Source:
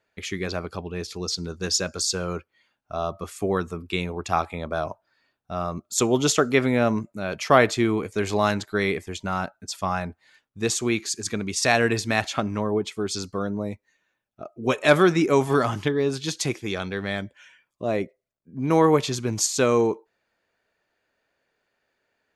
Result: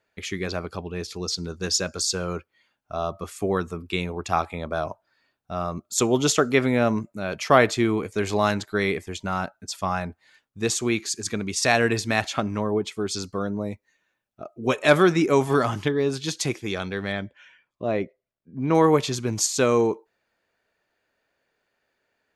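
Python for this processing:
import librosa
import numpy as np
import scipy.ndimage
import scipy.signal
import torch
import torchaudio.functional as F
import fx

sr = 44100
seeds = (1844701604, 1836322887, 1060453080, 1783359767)

y = fx.lowpass(x, sr, hz=4100.0, slope=12, at=(17.12, 18.75))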